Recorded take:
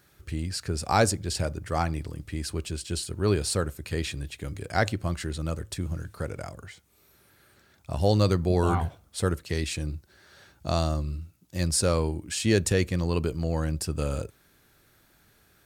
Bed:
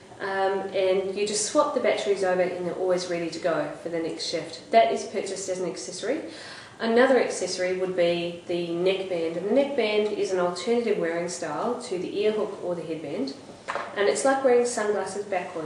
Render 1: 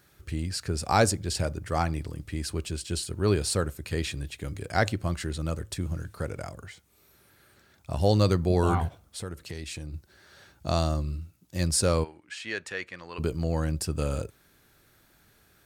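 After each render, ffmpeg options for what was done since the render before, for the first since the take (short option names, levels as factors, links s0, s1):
-filter_complex "[0:a]asplit=3[s0][s1][s2];[s0]afade=t=out:st=8.88:d=0.02[s3];[s1]acompressor=threshold=0.0178:ratio=3:attack=3.2:release=140:knee=1:detection=peak,afade=t=in:st=8.88:d=0.02,afade=t=out:st=9.93:d=0.02[s4];[s2]afade=t=in:st=9.93:d=0.02[s5];[s3][s4][s5]amix=inputs=3:normalize=0,asplit=3[s6][s7][s8];[s6]afade=t=out:st=12.03:d=0.02[s9];[s7]bandpass=f=1700:t=q:w=1.3,afade=t=in:st=12.03:d=0.02,afade=t=out:st=13.18:d=0.02[s10];[s8]afade=t=in:st=13.18:d=0.02[s11];[s9][s10][s11]amix=inputs=3:normalize=0"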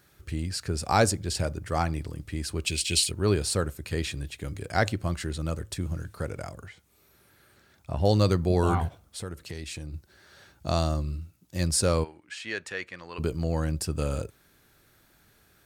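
-filter_complex "[0:a]asplit=3[s0][s1][s2];[s0]afade=t=out:st=2.66:d=0.02[s3];[s1]highshelf=f=1800:t=q:w=3:g=9,afade=t=in:st=2.66:d=0.02,afade=t=out:st=3.1:d=0.02[s4];[s2]afade=t=in:st=3.1:d=0.02[s5];[s3][s4][s5]amix=inputs=3:normalize=0,asettb=1/sr,asplit=3[s6][s7][s8];[s6]atrim=end=6.684[s9];[s7]atrim=start=6.68:end=8.05,asetpts=PTS-STARTPTS,afade=t=in:d=0.004:c=qsin,afade=t=out:st=1.366:d=0.004:c=qsin,acrossover=split=3000[s10][s11];[s11]acompressor=threshold=0.00112:ratio=4:attack=1:release=60[s12];[s10][s12]amix=inputs=2:normalize=0[s13];[s8]atrim=start=8.046[s14];[s9][s13]acrossfade=d=0.004:c1=hsin:c2=qsin[s15];[s15][s14]acrossfade=d=0.004:c1=qsin:c2=hsin"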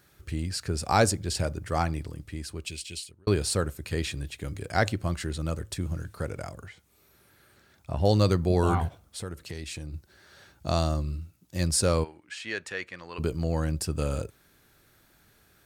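-filter_complex "[0:a]asplit=2[s0][s1];[s0]atrim=end=3.27,asetpts=PTS-STARTPTS,afade=t=out:st=1.84:d=1.43[s2];[s1]atrim=start=3.27,asetpts=PTS-STARTPTS,afade=t=in:d=0.004:c=hsin[s3];[s2][s3]concat=n=2:v=0:a=1"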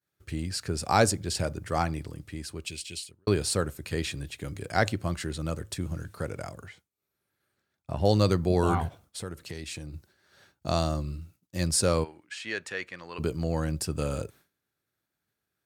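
-af "highpass=85,agate=range=0.0224:threshold=0.00398:ratio=3:detection=peak"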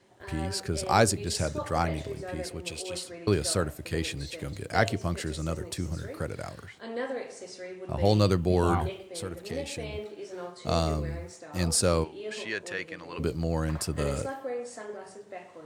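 -filter_complex "[1:a]volume=0.188[s0];[0:a][s0]amix=inputs=2:normalize=0"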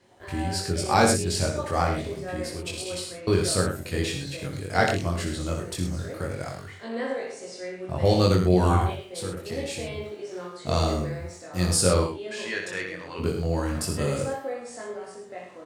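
-filter_complex "[0:a]asplit=2[s0][s1];[s1]adelay=22,volume=0.794[s2];[s0][s2]amix=inputs=2:normalize=0,aecho=1:1:61|104:0.473|0.355"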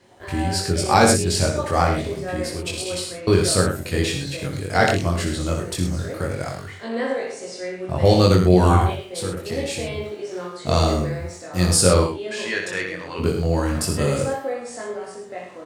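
-af "volume=1.88,alimiter=limit=0.794:level=0:latency=1"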